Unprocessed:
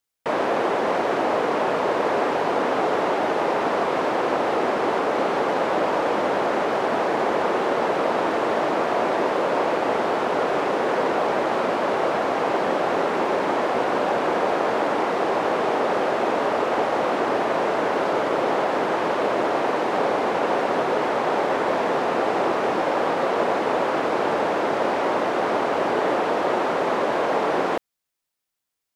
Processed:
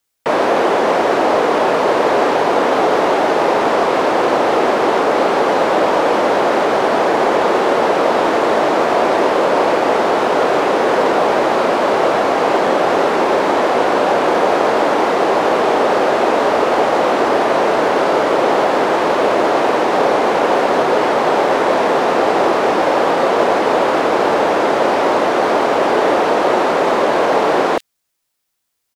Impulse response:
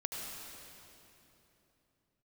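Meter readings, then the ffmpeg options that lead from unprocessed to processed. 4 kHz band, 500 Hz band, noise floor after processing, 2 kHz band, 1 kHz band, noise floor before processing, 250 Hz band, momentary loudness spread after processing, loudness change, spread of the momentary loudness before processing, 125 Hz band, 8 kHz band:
+9.0 dB, +8.0 dB, -17 dBFS, +7.5 dB, +8.0 dB, -25 dBFS, +7.5 dB, 1 LU, +8.0 dB, 1 LU, +6.0 dB, +10.5 dB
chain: -filter_complex "[0:a]acrossover=split=240|950|3200[s0][s1][s2][s3];[s0]alimiter=level_in=4.22:limit=0.0631:level=0:latency=1,volume=0.237[s4];[s2]asoftclip=type=hard:threshold=0.0398[s5];[s3]asplit=2[s6][s7];[s7]adelay=26,volume=0.668[s8];[s6][s8]amix=inputs=2:normalize=0[s9];[s4][s1][s5][s9]amix=inputs=4:normalize=0,volume=2.66"

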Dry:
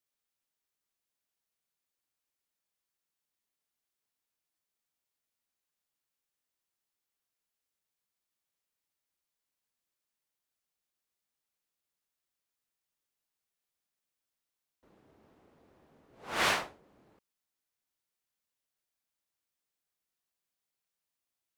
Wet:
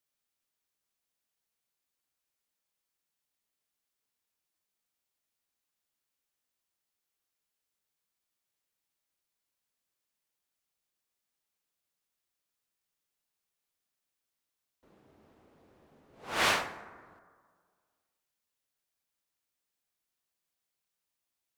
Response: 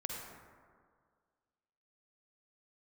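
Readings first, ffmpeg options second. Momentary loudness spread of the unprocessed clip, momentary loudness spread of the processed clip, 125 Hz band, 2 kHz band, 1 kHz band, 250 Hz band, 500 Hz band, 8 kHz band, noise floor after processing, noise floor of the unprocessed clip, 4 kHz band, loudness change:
13 LU, 17 LU, +1.0 dB, +1.5 dB, +1.5 dB, +1.0 dB, +1.0 dB, +1.5 dB, under -85 dBFS, under -85 dBFS, +1.5 dB, +1.0 dB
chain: -filter_complex "[0:a]bandreject=f=58.93:t=h:w=4,bandreject=f=117.86:t=h:w=4,bandreject=f=176.79:t=h:w=4,bandreject=f=235.72:t=h:w=4,bandreject=f=294.65:t=h:w=4,bandreject=f=353.58:t=h:w=4,bandreject=f=412.51:t=h:w=4,bandreject=f=471.44:t=h:w=4,bandreject=f=530.37:t=h:w=4,bandreject=f=589.3:t=h:w=4,bandreject=f=648.23:t=h:w=4,bandreject=f=707.16:t=h:w=4,bandreject=f=766.09:t=h:w=4,bandreject=f=825.02:t=h:w=4,bandreject=f=883.95:t=h:w=4,bandreject=f=942.88:t=h:w=4,bandreject=f=1001.81:t=h:w=4,bandreject=f=1060.74:t=h:w=4,bandreject=f=1119.67:t=h:w=4,bandreject=f=1178.6:t=h:w=4,bandreject=f=1237.53:t=h:w=4,bandreject=f=1296.46:t=h:w=4,bandreject=f=1355.39:t=h:w=4,bandreject=f=1414.32:t=h:w=4,bandreject=f=1473.25:t=h:w=4,bandreject=f=1532.18:t=h:w=4,bandreject=f=1591.11:t=h:w=4,bandreject=f=1650.04:t=h:w=4,bandreject=f=1708.97:t=h:w=4,bandreject=f=1767.9:t=h:w=4,bandreject=f=1826.83:t=h:w=4,bandreject=f=1885.76:t=h:w=4,bandreject=f=1944.69:t=h:w=4,bandreject=f=2003.62:t=h:w=4,bandreject=f=2062.55:t=h:w=4,bandreject=f=2121.48:t=h:w=4,bandreject=f=2180.41:t=h:w=4,bandreject=f=2239.34:t=h:w=4,asplit=2[s0][s1];[1:a]atrim=start_sample=2205[s2];[s1][s2]afir=irnorm=-1:irlink=0,volume=0.282[s3];[s0][s3]amix=inputs=2:normalize=0"

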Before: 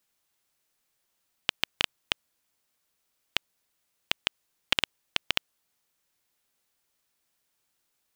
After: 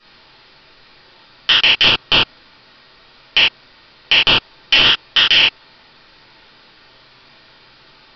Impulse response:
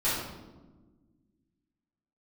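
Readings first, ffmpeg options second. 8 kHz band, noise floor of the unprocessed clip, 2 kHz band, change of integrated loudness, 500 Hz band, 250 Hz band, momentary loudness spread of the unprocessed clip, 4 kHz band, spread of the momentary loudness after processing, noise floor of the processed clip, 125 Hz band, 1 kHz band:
no reading, -77 dBFS, +18.5 dB, +19.0 dB, +17.0 dB, +17.5 dB, 6 LU, +20.0 dB, 6 LU, -48 dBFS, +19.0 dB, +17.0 dB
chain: -filter_complex "[0:a]aresample=11025,asoftclip=type=hard:threshold=0.0891,aresample=44100[s0];[1:a]atrim=start_sample=2205,afade=t=out:st=0.16:d=0.01,atrim=end_sample=7497[s1];[s0][s1]afir=irnorm=-1:irlink=0,alimiter=level_in=22.4:limit=0.891:release=50:level=0:latency=1,volume=0.891"

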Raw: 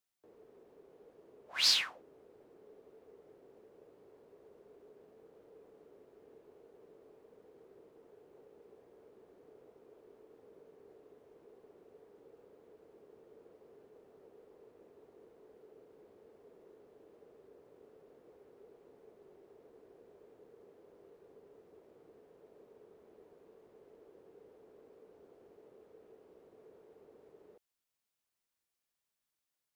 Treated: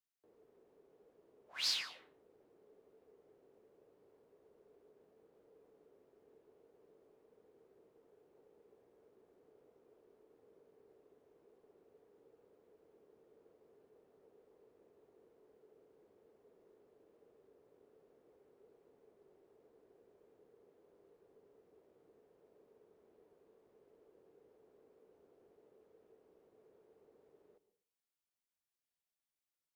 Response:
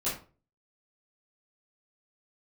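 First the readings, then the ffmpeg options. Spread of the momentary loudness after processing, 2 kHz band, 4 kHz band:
14 LU, -8.0 dB, -8.0 dB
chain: -filter_complex "[0:a]asplit=2[s0][s1];[1:a]atrim=start_sample=2205,asetrate=32634,aresample=44100,adelay=100[s2];[s1][s2]afir=irnorm=-1:irlink=0,volume=0.0668[s3];[s0][s3]amix=inputs=2:normalize=0,volume=0.398"

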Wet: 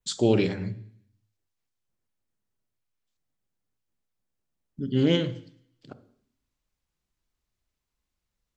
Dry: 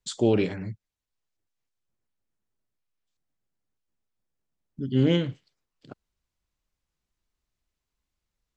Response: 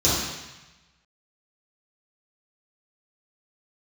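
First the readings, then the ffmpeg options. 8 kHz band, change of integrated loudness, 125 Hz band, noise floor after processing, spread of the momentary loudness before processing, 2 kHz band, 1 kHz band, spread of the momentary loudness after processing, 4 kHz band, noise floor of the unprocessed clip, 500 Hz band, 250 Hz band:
no reading, 0.0 dB, -1.0 dB, -84 dBFS, 15 LU, +1.5 dB, +0.5 dB, 16 LU, +3.0 dB, under -85 dBFS, +0.5 dB, 0.0 dB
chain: -filter_complex "[0:a]adynamicequalizer=threshold=0.00282:dfrequency=4900:dqfactor=1.2:tfrequency=4900:tqfactor=1.2:attack=5:release=100:ratio=0.375:range=3.5:mode=boostabove:tftype=bell,asplit=2[s0][s1];[1:a]atrim=start_sample=2205,asetrate=70560,aresample=44100,adelay=22[s2];[s1][s2]afir=irnorm=-1:irlink=0,volume=0.0398[s3];[s0][s3]amix=inputs=2:normalize=0"

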